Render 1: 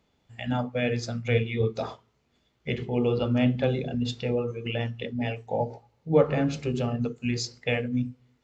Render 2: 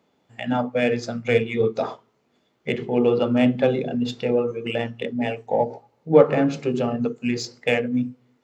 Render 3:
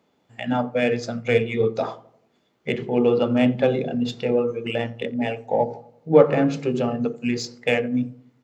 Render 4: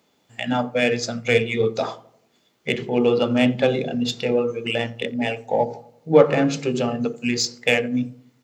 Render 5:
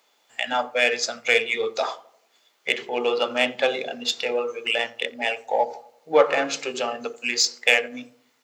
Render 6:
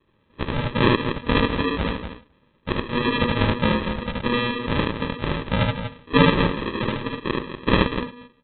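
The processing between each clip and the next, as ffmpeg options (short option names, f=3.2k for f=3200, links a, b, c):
-filter_complex "[0:a]highpass=210,asplit=2[a][b];[b]adynamicsmooth=sensitivity=2:basefreq=2.1k,volume=-0.5dB[c];[a][c]amix=inputs=2:normalize=0,volume=1.5dB"
-filter_complex "[0:a]asplit=2[a][b];[b]adelay=87,lowpass=f=1k:p=1,volume=-17.5dB,asplit=2[c][d];[d]adelay=87,lowpass=f=1k:p=1,volume=0.54,asplit=2[e][f];[f]adelay=87,lowpass=f=1k:p=1,volume=0.54,asplit=2[g][h];[h]adelay=87,lowpass=f=1k:p=1,volume=0.54,asplit=2[i][j];[j]adelay=87,lowpass=f=1k:p=1,volume=0.54[k];[a][c][e][g][i][k]amix=inputs=6:normalize=0"
-af "highshelf=f=2.9k:g=12"
-af "highpass=690,volume=3dB"
-af "aresample=8000,acrusher=samples=11:mix=1:aa=0.000001,aresample=44100,lowshelf=f=340:g=-6.5,aecho=1:1:75.8|242:0.891|0.398,volume=3.5dB"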